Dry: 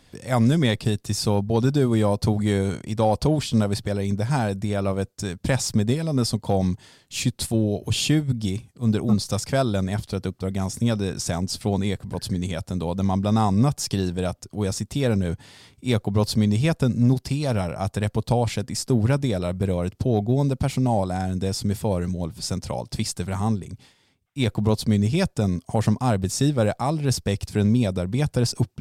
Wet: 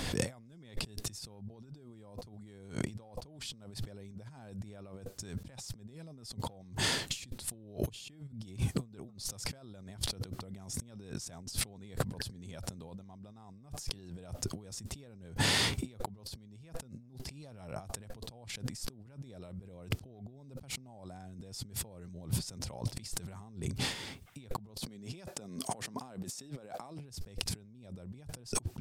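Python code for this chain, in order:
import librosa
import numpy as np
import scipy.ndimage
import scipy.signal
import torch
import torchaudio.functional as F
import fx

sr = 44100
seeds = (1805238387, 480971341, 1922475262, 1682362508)

y = fx.highpass(x, sr, hz=220.0, slope=12, at=(24.8, 26.99))
y = fx.over_compress(y, sr, threshold_db=-46.0, ratio=-1.0)
y = y * librosa.db_to_amplitude(1.0)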